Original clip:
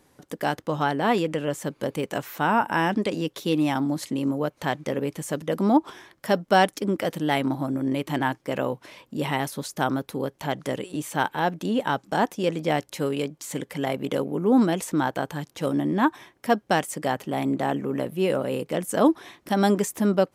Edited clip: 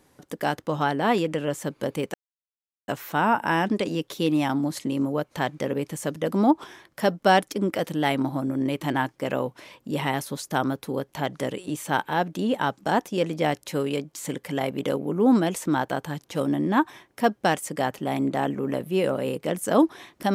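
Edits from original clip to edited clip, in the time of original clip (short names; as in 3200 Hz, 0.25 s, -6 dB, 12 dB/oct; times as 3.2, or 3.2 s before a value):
2.14 insert silence 0.74 s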